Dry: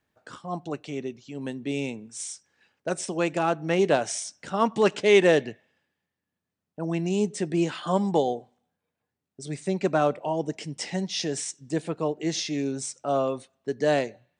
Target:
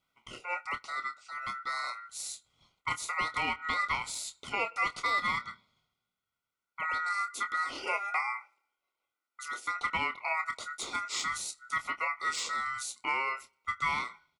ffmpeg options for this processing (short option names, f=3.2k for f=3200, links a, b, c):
-filter_complex "[0:a]deesser=0.6,aeval=exprs='val(0)*sin(2*PI*1600*n/s)':c=same,asettb=1/sr,asplit=3[a][b][c];[a]atrim=end=6.974[d];[b]atrim=start=6.97:end=9.68,asetpts=PTS-STARTPTS,afade=t=in:d=0.004:c=qsin,afade=t=out:st=2.706:d=0.004:c=qsin,lowshelf=f=220:t=q:w=1.5:g=-10.5[e];[c]atrim=start=9.676[f];[d][e]acrossfade=d=0.004:c1=hsin:c2=qsin[g];[g][f]acrossfade=d=0.004:c1=qsin:c2=hsin,acompressor=threshold=-27dB:ratio=6,asuperstop=centerf=1700:order=20:qfactor=4.5,asplit=2[h][i];[i]adelay=26,volume=-10dB[j];[h][j]amix=inputs=2:normalize=0"